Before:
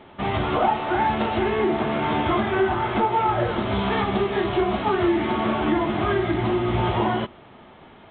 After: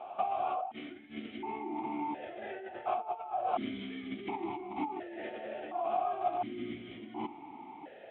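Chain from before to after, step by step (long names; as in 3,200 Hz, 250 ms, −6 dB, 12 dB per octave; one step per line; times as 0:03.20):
parametric band 770 Hz +8.5 dB 0.57 octaves
compressor whose output falls as the input rises −27 dBFS, ratio −1
formant filter that steps through the vowels 1.4 Hz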